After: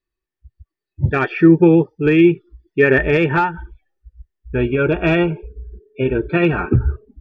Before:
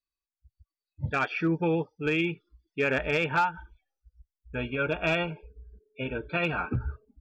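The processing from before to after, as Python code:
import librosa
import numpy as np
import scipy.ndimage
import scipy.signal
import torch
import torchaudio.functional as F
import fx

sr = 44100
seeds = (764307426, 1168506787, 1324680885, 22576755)

y = fx.bass_treble(x, sr, bass_db=8, treble_db=-11)
y = fx.small_body(y, sr, hz=(370.0, 1800.0), ring_ms=60, db=16)
y = y * librosa.db_to_amplitude(7.0)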